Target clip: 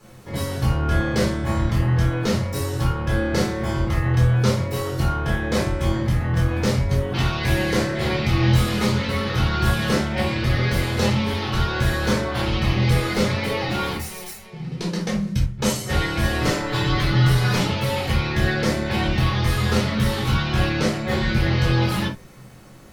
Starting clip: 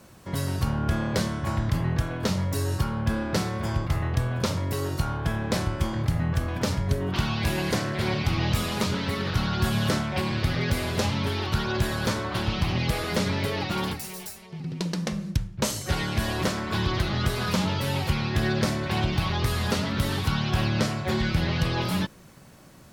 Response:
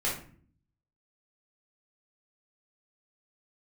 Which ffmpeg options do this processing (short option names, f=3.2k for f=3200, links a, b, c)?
-filter_complex "[0:a]asettb=1/sr,asplit=3[a][b][c];[a]atrim=end=16.414[d];[b]atrim=start=16.41:end=17.67,asetpts=PTS-STARTPTS,afade=t=in:d=0.004:c=qsin,afade=t=out:st=1.256:d=0.004:c=qsin,aecho=1:1:6.9:0.65,atrim=end_sample=55566[e];[c]atrim=start=17.666[f];[d][e]acrossfade=d=0.004:c1=hsin:c2=qsin[g];[g][f]acrossfade=d=0.004:c1=qsin:c2=hsin[h];[1:a]atrim=start_sample=2205,atrim=end_sample=4410[i];[h][i]afir=irnorm=-1:irlink=0,volume=-2.5dB"